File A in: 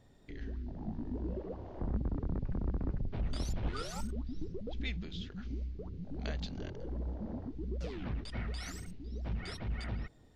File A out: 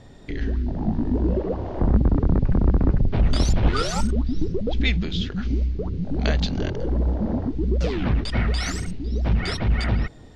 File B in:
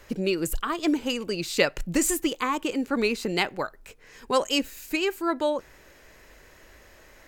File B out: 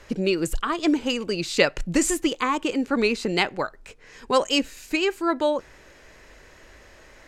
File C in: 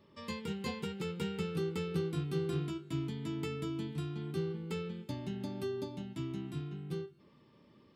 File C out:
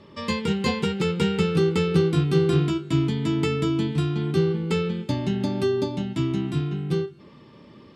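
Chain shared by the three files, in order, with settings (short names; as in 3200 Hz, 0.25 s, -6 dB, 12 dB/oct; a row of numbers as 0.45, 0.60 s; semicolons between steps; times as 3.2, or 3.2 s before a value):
LPF 8300 Hz 12 dB/oct; match loudness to -24 LUFS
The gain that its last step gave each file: +16.5, +3.0, +14.5 dB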